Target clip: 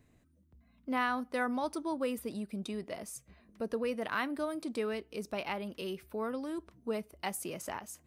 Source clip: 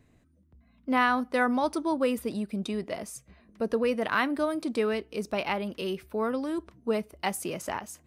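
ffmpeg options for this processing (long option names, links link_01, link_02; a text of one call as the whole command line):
ffmpeg -i in.wav -filter_complex "[0:a]highshelf=frequency=9100:gain=6,asplit=2[link_01][link_02];[link_02]acompressor=threshold=-40dB:ratio=6,volume=-3dB[link_03];[link_01][link_03]amix=inputs=2:normalize=0,volume=-8.5dB" out.wav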